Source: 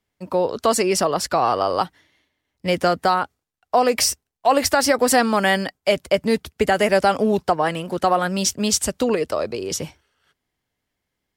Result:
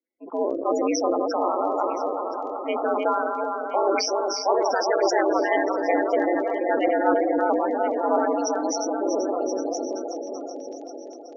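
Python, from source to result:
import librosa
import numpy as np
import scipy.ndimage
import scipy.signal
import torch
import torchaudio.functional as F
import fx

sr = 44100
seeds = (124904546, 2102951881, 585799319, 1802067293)

y = fx.reverse_delay_fb(x, sr, ms=191, feedback_pct=82, wet_db=-4.5)
y = fx.transient(y, sr, attack_db=-2, sustain_db=5)
y = fx.spec_topn(y, sr, count=16)
y = fx.dmg_crackle(y, sr, seeds[0], per_s=14.0, level_db=-37.0)
y = y * np.sin(2.0 * np.pi * 96.0 * np.arange(len(y)) / sr)
y = fx.brickwall_bandpass(y, sr, low_hz=230.0, high_hz=7000.0)
y = fx.notch(y, sr, hz=1200.0, q=25.0)
y = y + 10.0 ** (-14.0 / 20.0) * np.pad(y, (int(1023 * sr / 1000.0), 0))[:len(y)]
y = fx.sustainer(y, sr, db_per_s=38.0)
y = y * librosa.db_to_amplitude(-2.5)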